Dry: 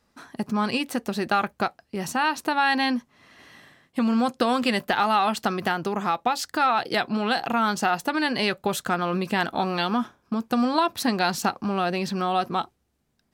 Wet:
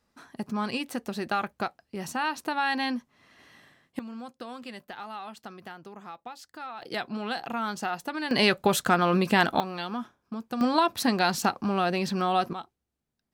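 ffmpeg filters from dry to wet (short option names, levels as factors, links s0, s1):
-af "asetnsamples=n=441:p=0,asendcmd='3.99 volume volume -18dB;6.82 volume volume -8dB;8.31 volume volume 2.5dB;9.6 volume volume -9dB;10.61 volume volume -1dB;12.53 volume volume -12dB',volume=0.531"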